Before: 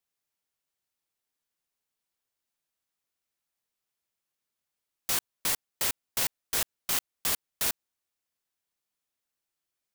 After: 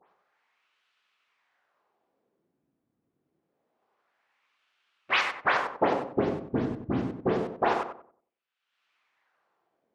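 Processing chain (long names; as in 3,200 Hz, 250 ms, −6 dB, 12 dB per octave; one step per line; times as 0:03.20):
every frequency bin delayed by itself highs late, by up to 123 ms
high-pass filter 81 Hz 24 dB per octave
high-shelf EQ 7,000 Hz +8.5 dB
in parallel at +3 dB: brickwall limiter −23.5 dBFS, peak gain reduction 14.5 dB
on the sum: leveller curve on the samples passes 5
upward compression, threshold −28 dBFS
LFO wah 0.26 Hz 240–2,900 Hz, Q 2.6
pitch-shifted copies added −12 semitones −6 dB
head-to-tape spacing loss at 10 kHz 24 dB
feedback echo with a low-pass in the loop 93 ms, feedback 33%, low-pass 1,200 Hz, level −4.5 dB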